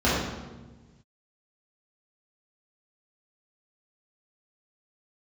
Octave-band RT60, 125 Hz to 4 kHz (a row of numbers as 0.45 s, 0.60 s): 2.0 s, 1.6 s, 1.4 s, 1.1 s, 1.0 s, 0.90 s